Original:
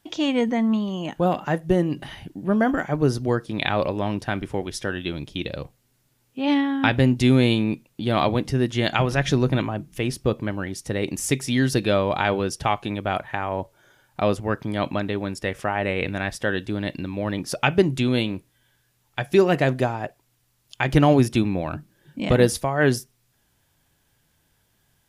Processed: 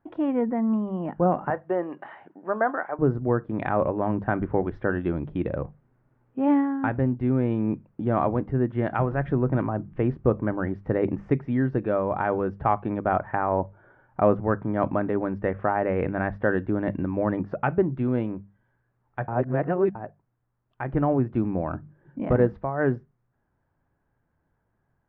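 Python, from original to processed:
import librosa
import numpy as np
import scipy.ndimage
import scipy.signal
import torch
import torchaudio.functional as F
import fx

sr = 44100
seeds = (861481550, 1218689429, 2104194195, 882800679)

y = fx.highpass(x, sr, hz=630.0, slope=12, at=(1.5, 2.99))
y = fx.edit(y, sr, fx.reverse_span(start_s=19.28, length_s=0.67), tone=tone)
y = scipy.signal.sosfilt(scipy.signal.butter(4, 1500.0, 'lowpass', fs=sr, output='sos'), y)
y = fx.rider(y, sr, range_db=5, speed_s=0.5)
y = fx.hum_notches(y, sr, base_hz=50, count=4)
y = y * librosa.db_to_amplitude(-1.5)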